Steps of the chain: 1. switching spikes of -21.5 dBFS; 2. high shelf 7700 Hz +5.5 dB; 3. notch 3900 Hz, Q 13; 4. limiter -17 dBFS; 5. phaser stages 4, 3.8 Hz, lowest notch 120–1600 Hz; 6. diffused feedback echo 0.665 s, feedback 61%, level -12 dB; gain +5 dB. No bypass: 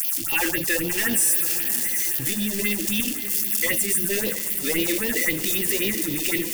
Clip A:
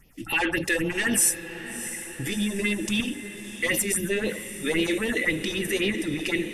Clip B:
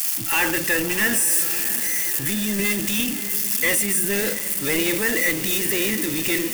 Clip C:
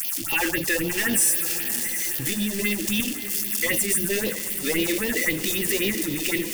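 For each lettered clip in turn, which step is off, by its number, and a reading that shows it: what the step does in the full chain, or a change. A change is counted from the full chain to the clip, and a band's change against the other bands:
1, distortion -3 dB; 5, 1 kHz band +3.0 dB; 2, 8 kHz band -1.5 dB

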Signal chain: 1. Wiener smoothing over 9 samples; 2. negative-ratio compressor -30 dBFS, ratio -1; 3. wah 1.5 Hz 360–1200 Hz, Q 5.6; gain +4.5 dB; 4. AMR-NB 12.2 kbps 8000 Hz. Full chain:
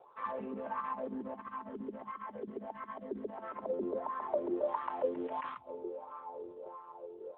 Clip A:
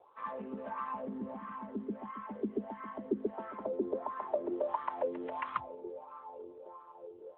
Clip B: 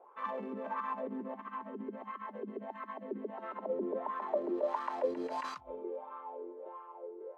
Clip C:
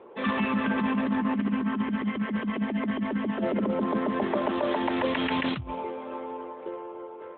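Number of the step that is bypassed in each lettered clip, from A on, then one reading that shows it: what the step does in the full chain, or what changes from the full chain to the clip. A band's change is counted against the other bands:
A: 2, crest factor change +2.5 dB; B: 4, 2 kHz band +1.5 dB; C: 3, 500 Hz band -11.5 dB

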